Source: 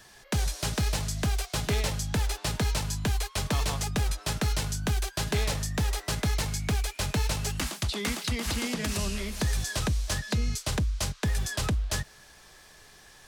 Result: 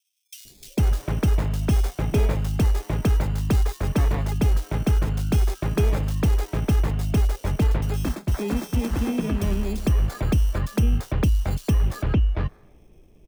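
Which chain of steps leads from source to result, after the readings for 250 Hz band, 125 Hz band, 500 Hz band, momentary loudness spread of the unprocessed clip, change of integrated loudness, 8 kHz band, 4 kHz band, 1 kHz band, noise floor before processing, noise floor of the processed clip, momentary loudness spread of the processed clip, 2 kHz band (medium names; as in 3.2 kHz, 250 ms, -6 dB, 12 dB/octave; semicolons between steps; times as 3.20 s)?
+8.0 dB, +7.5 dB, +6.0 dB, 2 LU, +6.0 dB, -7.5 dB, -7.0 dB, +1.5 dB, -54 dBFS, -53 dBFS, 3 LU, -3.0 dB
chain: tilt EQ -2 dB/octave; level-controlled noise filter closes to 370 Hz, open at -18 dBFS; peaking EQ 320 Hz +6.5 dB 1.3 oct; sample-rate reducer 2.9 kHz, jitter 0%; bands offset in time highs, lows 450 ms, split 3.4 kHz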